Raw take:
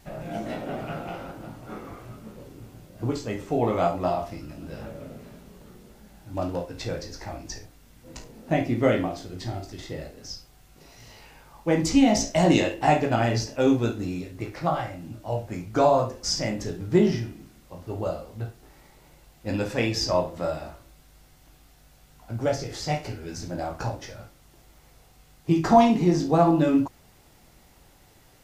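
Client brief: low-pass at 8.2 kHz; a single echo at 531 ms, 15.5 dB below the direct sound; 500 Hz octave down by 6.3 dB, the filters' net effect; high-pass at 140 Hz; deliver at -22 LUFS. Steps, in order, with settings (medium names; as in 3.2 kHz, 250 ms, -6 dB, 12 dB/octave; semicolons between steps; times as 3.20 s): high-pass 140 Hz; low-pass 8.2 kHz; peaking EQ 500 Hz -9 dB; delay 531 ms -15.5 dB; trim +7 dB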